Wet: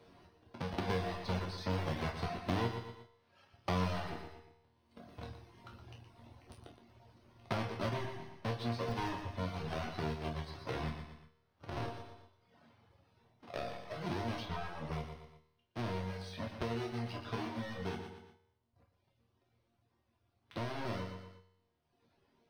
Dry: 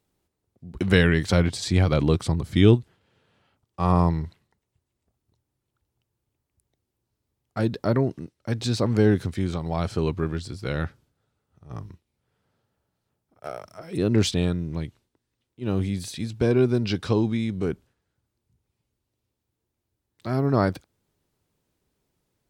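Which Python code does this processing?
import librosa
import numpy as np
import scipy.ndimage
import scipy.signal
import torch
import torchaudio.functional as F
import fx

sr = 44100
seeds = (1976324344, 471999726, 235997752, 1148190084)

p1 = fx.halfwave_hold(x, sr)
p2 = fx.doppler_pass(p1, sr, speed_mps=10, closest_m=9.8, pass_at_s=4.59)
p3 = scipy.signal.savgol_filter(p2, 15, 4, mode='constant')
p4 = fx.low_shelf(p3, sr, hz=110.0, db=-8.0)
p5 = fx.resonator_bank(p4, sr, root=39, chord='minor', decay_s=0.61)
p6 = fx.small_body(p5, sr, hz=(700.0, 1000.0), ring_ms=30, db=6)
p7 = fx.schmitt(p6, sr, flips_db=-38.0)
p8 = p6 + (p7 * librosa.db_to_amplitude(-10.0))
p9 = fx.dereverb_blind(p8, sr, rt60_s=0.92)
p10 = p9 + fx.echo_feedback(p9, sr, ms=118, feedback_pct=29, wet_db=-10.0, dry=0)
p11 = fx.band_squash(p10, sr, depth_pct=100)
y = p11 * librosa.db_to_amplitude(11.0)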